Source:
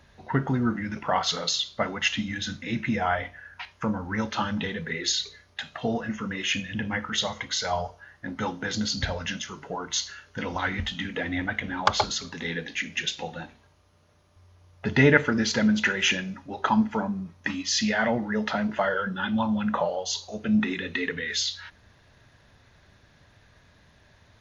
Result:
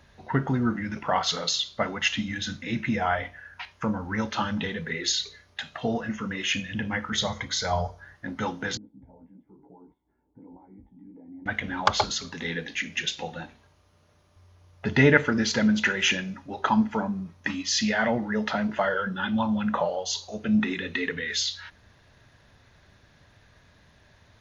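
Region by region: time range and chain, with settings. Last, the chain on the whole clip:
7.10–8.15 s: bass shelf 190 Hz +9 dB + band-stop 2.8 kHz, Q 5.9
8.77–11.46 s: doubling 16 ms -2.5 dB + compression 2.5:1, threshold -38 dBFS + cascade formant filter u
whole clip: none

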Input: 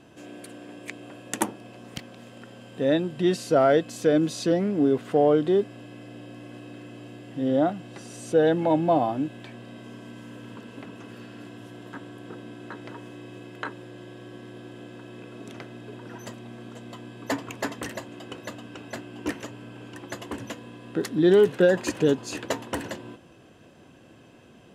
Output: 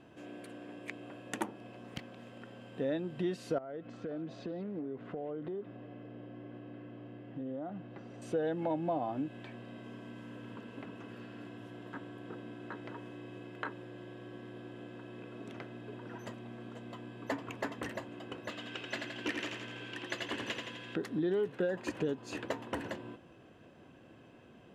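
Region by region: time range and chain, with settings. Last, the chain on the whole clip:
3.58–8.22 s: tape spacing loss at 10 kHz 27 dB + compression 12:1, threshold -31 dBFS + repeats whose band climbs or falls 177 ms, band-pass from 2.7 kHz, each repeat -0.7 oct, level -8 dB
18.49–20.96 s: frequency weighting D + feedback delay 84 ms, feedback 58%, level -5.5 dB
whole clip: tone controls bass -1 dB, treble -10 dB; compression 3:1, threshold -28 dBFS; trim -4.5 dB

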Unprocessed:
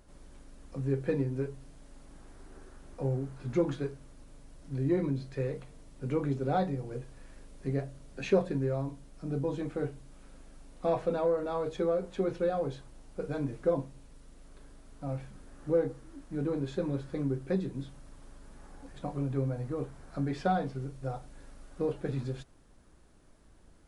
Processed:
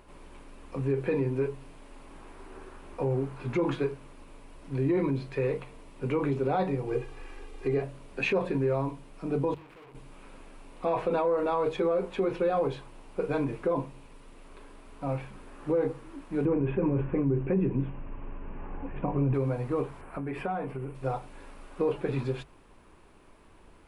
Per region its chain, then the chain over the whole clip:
6.87–7.82 s: peaking EQ 9.5 kHz -5.5 dB 0.32 oct + comb 2.5 ms, depth 80%
9.54–9.95 s: compression 2.5:1, threshold -36 dBFS + valve stage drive 57 dB, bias 0.8
16.45–19.34 s: elliptic low-pass 2.8 kHz + bass shelf 400 Hz +11.5 dB + band-stop 1.3 kHz, Q 23
20.01–20.95 s: high-order bell 4.9 kHz -14 dB 1.2 oct + compression, threshold -35 dBFS
whole clip: fifteen-band graphic EQ 400 Hz +6 dB, 1 kHz +10 dB, 2.5 kHz +10 dB, 6.3 kHz -5 dB; peak limiter -21.5 dBFS; hum notches 50/100/150 Hz; trim +2.5 dB

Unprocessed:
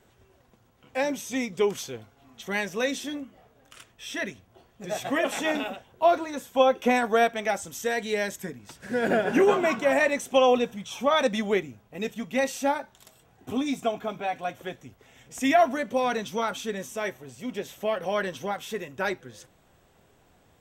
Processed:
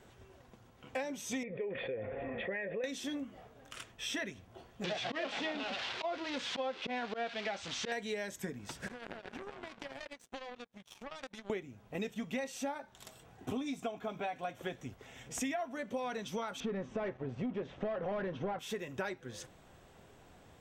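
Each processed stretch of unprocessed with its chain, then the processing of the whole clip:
1.43–2.84 s: cascade formant filter e + level flattener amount 70%
4.84–7.92 s: zero-crossing glitches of -14.5 dBFS + low-pass 3.9 kHz 24 dB/octave + slow attack 128 ms
8.88–11.50 s: treble shelf 8.7 kHz -7.5 dB + compression 8:1, threshold -33 dBFS + power-law waveshaper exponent 3
16.60–18.59 s: waveshaping leveller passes 3 + tape spacing loss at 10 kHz 43 dB
whole clip: treble shelf 12 kHz -10 dB; compression 10:1, threshold -37 dBFS; trim +2 dB

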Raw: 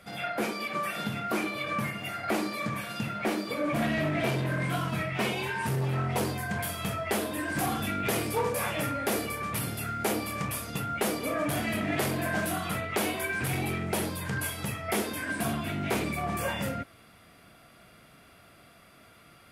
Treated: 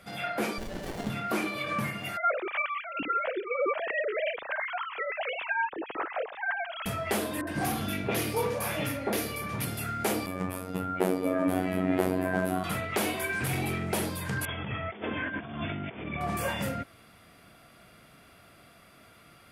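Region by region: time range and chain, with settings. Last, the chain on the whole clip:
0.58–1.10 s: treble shelf 3.8 kHz +8.5 dB + sliding maximum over 33 samples
2.17–6.86 s: formants replaced by sine waves + tremolo 9.9 Hz, depth 35%
7.41–9.65 s: peaking EQ 7.9 kHz -8.5 dB 0.21 oct + bands offset in time lows, highs 60 ms, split 1.3 kHz
10.26–12.64 s: FFT filter 130 Hz 0 dB, 310 Hz +9 dB, 750 Hz +4 dB, 6.1 kHz -11 dB, 9.9 kHz -6 dB + robot voice 92.4 Hz
14.45–16.21 s: compressor with a negative ratio -34 dBFS, ratio -0.5 + brick-wall FIR low-pass 3.6 kHz
whole clip: none

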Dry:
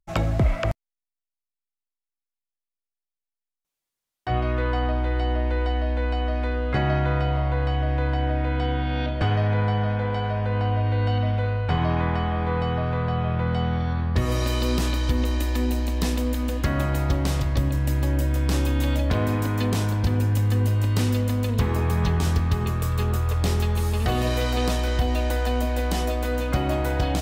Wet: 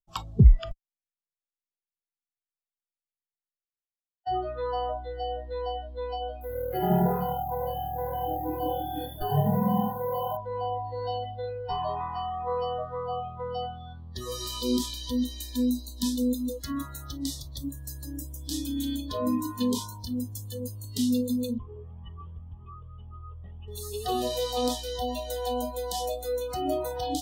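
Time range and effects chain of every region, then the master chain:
6.41–10.37 s: treble shelf 2.9 kHz -8 dB + frequency-shifting echo 81 ms, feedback 47%, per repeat +40 Hz, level -3 dB + careless resampling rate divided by 3×, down filtered, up hold
21.58–23.68 s: steep low-pass 3.3 kHz 96 dB/octave + Shepard-style flanger rising 1.9 Hz
whole clip: high-order bell 1.9 kHz -15 dB 1.1 oct; spectral noise reduction 26 dB; bass shelf 190 Hz +9.5 dB

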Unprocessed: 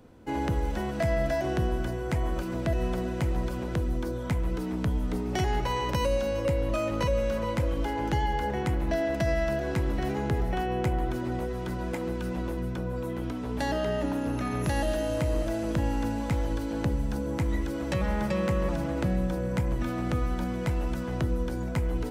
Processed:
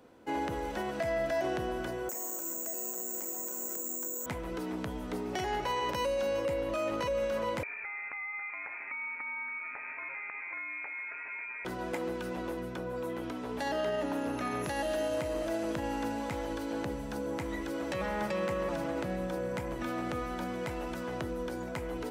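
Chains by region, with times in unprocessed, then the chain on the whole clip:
2.09–4.26 s: steep high-pass 210 Hz 48 dB/octave + treble shelf 2.4 kHz -11.5 dB + careless resampling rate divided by 6×, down filtered, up zero stuff
7.63–11.65 s: high-pass 530 Hz 24 dB/octave + compression, threshold -36 dBFS + frequency inversion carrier 2.9 kHz
whole clip: tone controls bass -8 dB, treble -2 dB; peak limiter -23 dBFS; bass shelf 110 Hz -10.5 dB

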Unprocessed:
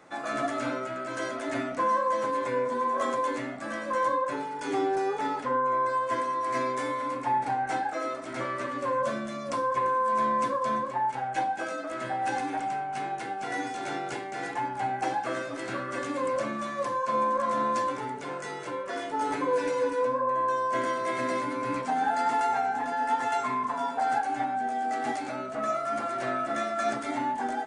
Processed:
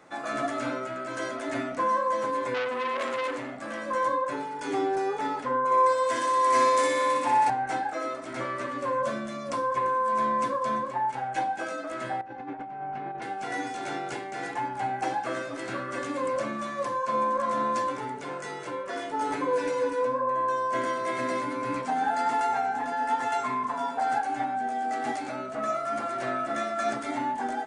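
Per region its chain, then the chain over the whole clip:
2.54–3.79 s: peaking EQ 520 Hz +4 dB 0.26 oct + transformer saturation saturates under 2 kHz
5.65–7.50 s: Bessel high-pass 170 Hz + treble shelf 3.1 kHz +10.5 dB + flutter echo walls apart 10.3 m, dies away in 1.1 s
12.21–13.22 s: tape spacing loss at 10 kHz 40 dB + compressor with a negative ratio -36 dBFS, ratio -0.5
whole clip: none

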